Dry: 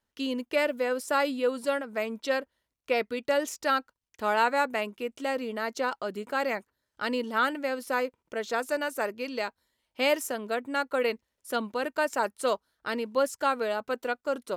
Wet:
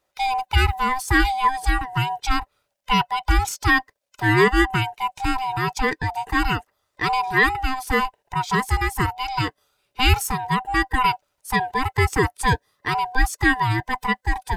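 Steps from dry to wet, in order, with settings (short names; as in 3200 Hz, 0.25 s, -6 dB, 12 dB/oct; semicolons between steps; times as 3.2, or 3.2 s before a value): band-swap scrambler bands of 500 Hz; gain +8.5 dB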